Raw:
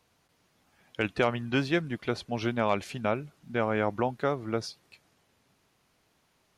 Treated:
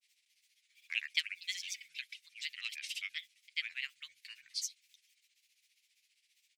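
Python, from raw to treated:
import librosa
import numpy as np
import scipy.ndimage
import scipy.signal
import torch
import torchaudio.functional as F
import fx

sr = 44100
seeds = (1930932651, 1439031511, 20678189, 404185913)

y = fx.granulator(x, sr, seeds[0], grain_ms=100.0, per_s=15.0, spray_ms=100.0, spread_st=7)
y = scipy.signal.sosfilt(scipy.signal.ellip(4, 1.0, 60, 2200.0, 'highpass', fs=sr, output='sos'), y)
y = y * 10.0 ** (4.0 / 20.0)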